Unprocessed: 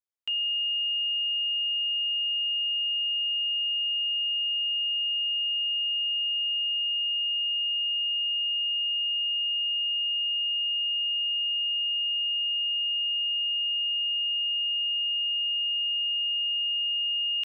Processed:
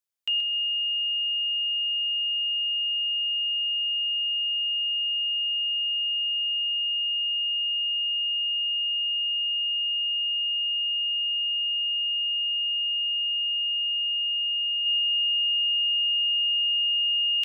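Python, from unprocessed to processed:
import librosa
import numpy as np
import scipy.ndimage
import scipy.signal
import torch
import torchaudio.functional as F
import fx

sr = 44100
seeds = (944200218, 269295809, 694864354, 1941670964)

y = fx.high_shelf(x, sr, hz=2700.0, db=fx.steps((0.0, 6.5), (14.85, 11.5)))
y = fx.echo_feedback(y, sr, ms=128, feedback_pct=26, wet_db=-10.5)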